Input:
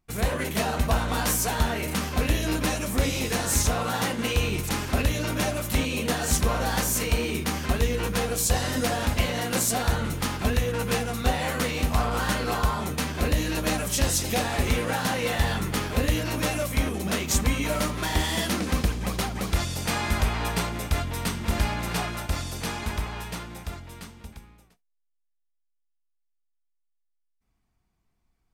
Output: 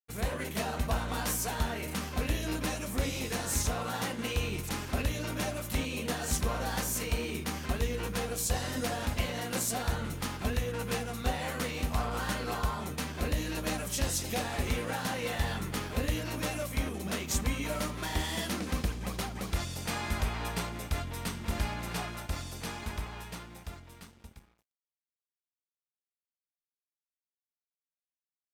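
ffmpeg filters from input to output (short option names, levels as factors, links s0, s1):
-af "aeval=exprs='sgn(val(0))*max(abs(val(0))-0.00251,0)':c=same,volume=0.447"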